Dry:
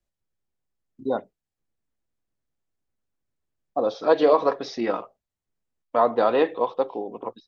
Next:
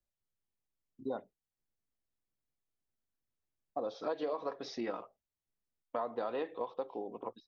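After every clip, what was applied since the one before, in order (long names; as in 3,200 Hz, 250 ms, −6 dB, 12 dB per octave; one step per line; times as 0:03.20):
downward compressor 5 to 1, threshold −25 dBFS, peak gain reduction 12 dB
level −8.5 dB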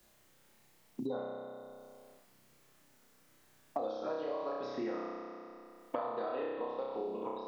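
flutter between parallel walls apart 5.4 metres, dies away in 1.1 s
multiband upward and downward compressor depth 100%
level −4.5 dB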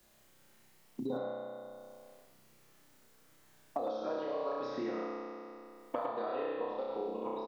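single-tap delay 108 ms −5 dB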